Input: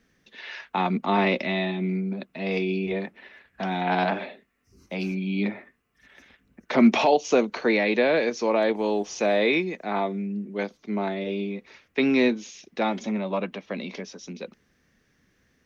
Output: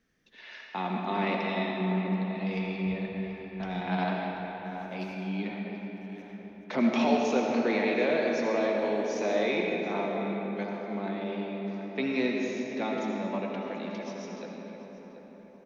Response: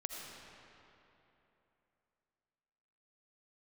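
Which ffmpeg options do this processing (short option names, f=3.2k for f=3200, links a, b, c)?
-filter_complex "[0:a]asplit=3[a][b][c];[a]afade=t=out:st=1.8:d=0.02[d];[b]asubboost=boost=7:cutoff=130,afade=t=in:st=1.8:d=0.02,afade=t=out:st=3.97:d=0.02[e];[c]afade=t=in:st=3.97:d=0.02[f];[d][e][f]amix=inputs=3:normalize=0,asplit=2[g][h];[h]adelay=734,lowpass=f=1.8k:p=1,volume=-9dB,asplit=2[i][j];[j]adelay=734,lowpass=f=1.8k:p=1,volume=0.41,asplit=2[k][l];[l]adelay=734,lowpass=f=1.8k:p=1,volume=0.41,asplit=2[m][n];[n]adelay=734,lowpass=f=1.8k:p=1,volume=0.41,asplit=2[o][p];[p]adelay=734,lowpass=f=1.8k:p=1,volume=0.41[q];[g][i][k][m][o][q]amix=inputs=6:normalize=0[r];[1:a]atrim=start_sample=2205[s];[r][s]afir=irnorm=-1:irlink=0,volume=-5.5dB"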